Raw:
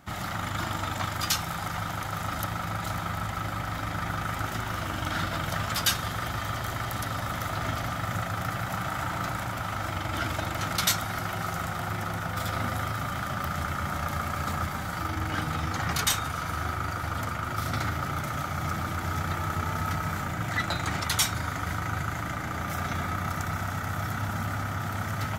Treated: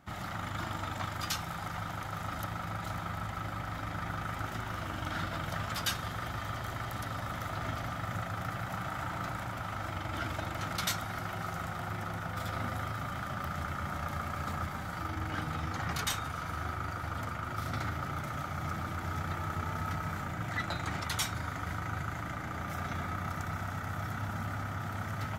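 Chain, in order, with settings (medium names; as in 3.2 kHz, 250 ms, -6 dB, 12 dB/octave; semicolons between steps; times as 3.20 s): treble shelf 4.1 kHz -5.5 dB; trim -5.5 dB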